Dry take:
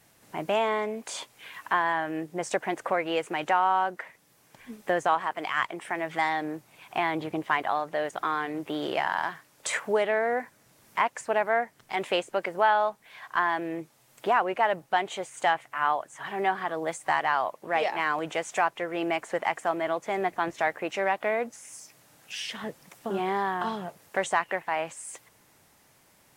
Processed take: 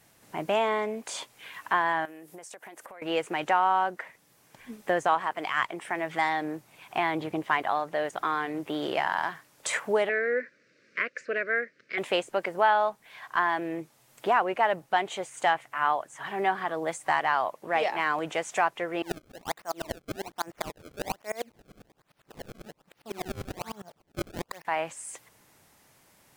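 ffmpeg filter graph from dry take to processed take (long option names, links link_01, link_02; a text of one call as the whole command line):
ffmpeg -i in.wav -filter_complex "[0:a]asettb=1/sr,asplit=3[link_01][link_02][link_03];[link_01]atrim=end=2.054[link_04];[link_02]atrim=start=2.05:end=3.02,asetpts=PTS-STARTPTS,afade=type=in:duration=0.004:curve=qsin,afade=type=out:start_time=0.966:duration=0.004:curve=qsin,highpass=frequency=380:poles=1,equalizer=frequency=12000:width=0.79:gain=12.5,acompressor=threshold=-41dB:ratio=16:attack=3.2:release=140:knee=1:detection=peak[link_05];[link_03]atrim=start=3.016[link_06];[link_04][link_05]acrossfade=duration=0.004:curve1=hsin:curve2=qsin[link_07];[link_07][link_06]acrossfade=duration=0.004:curve1=qsin:curve2=hsin,asettb=1/sr,asplit=3[link_08][link_09][link_10];[link_08]atrim=end=10.094[link_11];[link_09]atrim=start=10.09:end=11.98,asetpts=PTS-STARTPTS,afade=type=in:duration=0.004:curve=qsin,afade=type=out:start_time=1.886:duration=0.004:curve=qsin,asuperstop=centerf=850:order=4:qfactor=0.96,highpass=260,equalizer=frequency=520:width_type=q:width=4:gain=7,equalizer=frequency=810:width_type=q:width=4:gain=-6,equalizer=frequency=1600:width_type=q:width=4:gain=5,equalizer=frequency=2300:width_type=q:width=4:gain=4,equalizer=frequency=3300:width_type=q:width=4:gain=-10,lowpass=frequency=4900:width=0.5412,lowpass=frequency=4900:width=1.3066[link_12];[link_10]atrim=start=11.976[link_13];[link_11][link_12]acrossfade=duration=0.004:curve1=hsin:curve2=qsin[link_14];[link_14][link_13]acrossfade=duration=0.004:curve1=qsin:curve2=hsin,asettb=1/sr,asplit=3[link_15][link_16][link_17];[link_15]atrim=end=19.024[link_18];[link_16]atrim=start=19.02:end=24.65,asetpts=PTS-STARTPTS,afade=type=in:duration=0.004:curve=qsin,afade=type=out:start_time=5.626:duration=0.004:curve=qsin,acrusher=samples=27:mix=1:aa=0.000001:lfo=1:lforange=43.2:lforate=1.2,aeval=exprs='val(0)*pow(10,-29*if(lt(mod(-10*n/s,1),2*abs(-10)/1000),1-mod(-10*n/s,1)/(2*abs(-10)/1000),(mod(-10*n/s,1)-2*abs(-10)/1000)/(1-2*abs(-10)/1000))/20)':channel_layout=same[link_19];[link_17]atrim=start=24.646[link_20];[link_18][link_19]acrossfade=duration=0.004:curve1=hsin:curve2=qsin[link_21];[link_21][link_20]acrossfade=duration=0.004:curve1=qsin:curve2=hsin" out.wav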